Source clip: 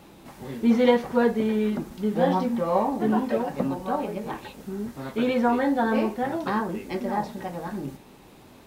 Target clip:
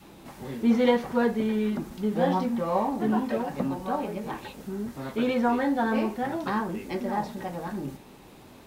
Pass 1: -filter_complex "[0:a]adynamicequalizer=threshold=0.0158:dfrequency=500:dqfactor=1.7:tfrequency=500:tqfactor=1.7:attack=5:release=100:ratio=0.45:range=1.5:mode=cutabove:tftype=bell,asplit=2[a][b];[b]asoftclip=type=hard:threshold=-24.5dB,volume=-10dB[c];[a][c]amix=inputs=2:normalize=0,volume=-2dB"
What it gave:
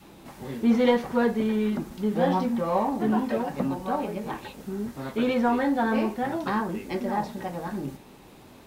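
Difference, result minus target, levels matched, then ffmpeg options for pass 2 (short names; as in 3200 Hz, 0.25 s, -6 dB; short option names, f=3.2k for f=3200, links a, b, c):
hard clip: distortion -6 dB
-filter_complex "[0:a]adynamicequalizer=threshold=0.0158:dfrequency=500:dqfactor=1.7:tfrequency=500:tqfactor=1.7:attack=5:release=100:ratio=0.45:range=1.5:mode=cutabove:tftype=bell,asplit=2[a][b];[b]asoftclip=type=hard:threshold=-36.5dB,volume=-10dB[c];[a][c]amix=inputs=2:normalize=0,volume=-2dB"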